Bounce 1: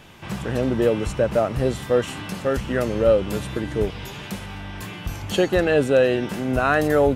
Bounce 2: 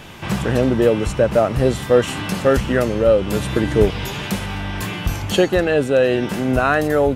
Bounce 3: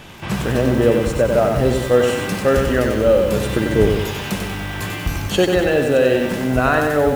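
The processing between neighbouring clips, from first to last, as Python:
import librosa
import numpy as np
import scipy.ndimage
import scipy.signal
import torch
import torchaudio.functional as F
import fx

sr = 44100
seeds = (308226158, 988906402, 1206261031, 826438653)

y1 = fx.rider(x, sr, range_db=4, speed_s=0.5)
y1 = y1 * 10.0 ** (4.5 / 20.0)
y2 = y1 + 10.0 ** (-21.0 / 20.0) * np.pad(y1, (int(623 * sr / 1000.0), 0))[:len(y1)]
y2 = fx.echo_crushed(y2, sr, ms=94, feedback_pct=55, bits=6, wet_db=-4)
y2 = y2 * 10.0 ** (-1.0 / 20.0)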